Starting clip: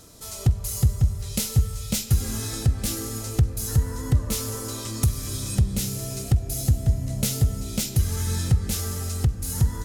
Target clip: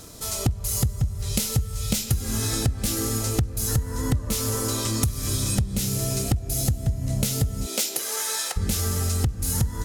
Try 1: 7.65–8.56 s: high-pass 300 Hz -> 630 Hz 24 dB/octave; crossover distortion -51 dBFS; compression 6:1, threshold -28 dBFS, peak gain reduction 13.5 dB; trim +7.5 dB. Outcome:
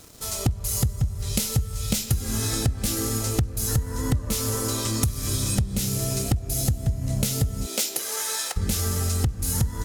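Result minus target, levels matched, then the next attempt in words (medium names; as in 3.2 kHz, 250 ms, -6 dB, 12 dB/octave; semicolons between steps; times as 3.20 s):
crossover distortion: distortion +11 dB
7.65–8.56 s: high-pass 300 Hz -> 630 Hz 24 dB/octave; crossover distortion -62 dBFS; compression 6:1, threshold -28 dBFS, peak gain reduction 13.5 dB; trim +7.5 dB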